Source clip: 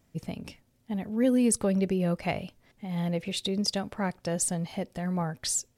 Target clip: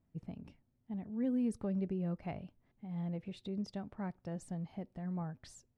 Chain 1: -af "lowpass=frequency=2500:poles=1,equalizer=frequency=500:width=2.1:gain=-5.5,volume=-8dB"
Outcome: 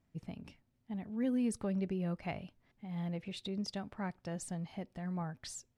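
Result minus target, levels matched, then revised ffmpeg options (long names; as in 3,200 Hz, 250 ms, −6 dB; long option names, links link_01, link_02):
2,000 Hz band +6.5 dB
-af "lowpass=frequency=680:poles=1,equalizer=frequency=500:width=2.1:gain=-5.5,volume=-8dB"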